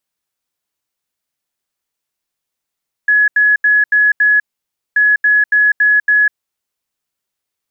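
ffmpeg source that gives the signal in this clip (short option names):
-f lavfi -i "aevalsrc='0.422*sin(2*PI*1690*t)*clip(min(mod(mod(t,1.88),0.28),0.2-mod(mod(t,1.88),0.28))/0.005,0,1)*lt(mod(t,1.88),1.4)':d=3.76:s=44100"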